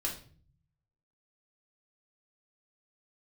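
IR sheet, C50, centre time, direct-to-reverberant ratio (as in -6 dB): 8.5 dB, 21 ms, -3.0 dB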